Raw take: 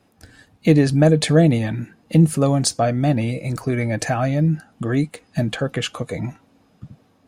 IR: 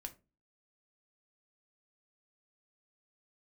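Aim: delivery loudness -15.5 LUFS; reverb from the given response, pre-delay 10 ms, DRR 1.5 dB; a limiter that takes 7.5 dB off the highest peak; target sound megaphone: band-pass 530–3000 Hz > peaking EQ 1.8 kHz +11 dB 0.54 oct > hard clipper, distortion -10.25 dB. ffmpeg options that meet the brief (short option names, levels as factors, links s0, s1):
-filter_complex "[0:a]alimiter=limit=0.316:level=0:latency=1,asplit=2[s0][s1];[1:a]atrim=start_sample=2205,adelay=10[s2];[s1][s2]afir=irnorm=-1:irlink=0,volume=1.41[s3];[s0][s3]amix=inputs=2:normalize=0,highpass=530,lowpass=3000,equalizer=f=1800:t=o:w=0.54:g=11,asoftclip=type=hard:threshold=0.1,volume=3.55"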